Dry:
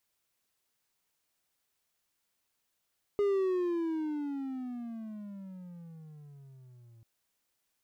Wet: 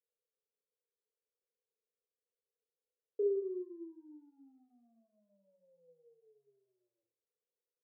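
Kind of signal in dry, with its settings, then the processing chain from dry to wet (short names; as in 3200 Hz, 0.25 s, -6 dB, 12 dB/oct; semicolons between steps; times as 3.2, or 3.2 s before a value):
gliding synth tone triangle, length 3.84 s, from 412 Hz, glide -22.5 st, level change -29.5 dB, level -22.5 dB
Butterworth band-pass 460 Hz, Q 4.6; on a send: reverse bouncing-ball echo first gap 30 ms, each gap 1.2×, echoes 5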